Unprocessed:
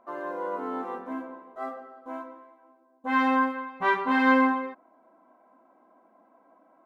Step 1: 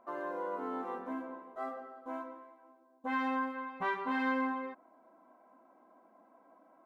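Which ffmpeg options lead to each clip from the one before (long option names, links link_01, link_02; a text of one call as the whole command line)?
ffmpeg -i in.wav -af "acompressor=threshold=-34dB:ratio=2,volume=-2.5dB" out.wav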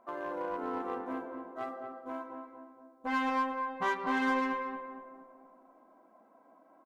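ffmpeg -i in.wav -filter_complex "[0:a]asplit=2[link_01][link_02];[link_02]acrusher=bits=4:mix=0:aa=0.5,volume=-10dB[link_03];[link_01][link_03]amix=inputs=2:normalize=0,asplit=2[link_04][link_05];[link_05]adelay=231,lowpass=frequency=1200:poles=1,volume=-5dB,asplit=2[link_06][link_07];[link_07]adelay=231,lowpass=frequency=1200:poles=1,volume=0.54,asplit=2[link_08][link_09];[link_09]adelay=231,lowpass=frequency=1200:poles=1,volume=0.54,asplit=2[link_10][link_11];[link_11]adelay=231,lowpass=frequency=1200:poles=1,volume=0.54,asplit=2[link_12][link_13];[link_13]adelay=231,lowpass=frequency=1200:poles=1,volume=0.54,asplit=2[link_14][link_15];[link_15]adelay=231,lowpass=frequency=1200:poles=1,volume=0.54,asplit=2[link_16][link_17];[link_17]adelay=231,lowpass=frequency=1200:poles=1,volume=0.54[link_18];[link_04][link_06][link_08][link_10][link_12][link_14][link_16][link_18]amix=inputs=8:normalize=0" out.wav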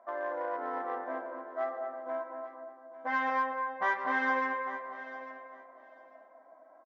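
ffmpeg -i in.wav -af "highpass=400,equalizer=frequency=410:width_type=q:width=4:gain=-4,equalizer=frequency=640:width_type=q:width=4:gain=10,equalizer=frequency=1800:width_type=q:width=4:gain=9,equalizer=frequency=2700:width_type=q:width=4:gain=-9,equalizer=frequency=4200:width_type=q:width=4:gain=-8,lowpass=frequency=5300:width=0.5412,lowpass=frequency=5300:width=1.3066,aecho=1:1:848|1696:0.188|0.032" out.wav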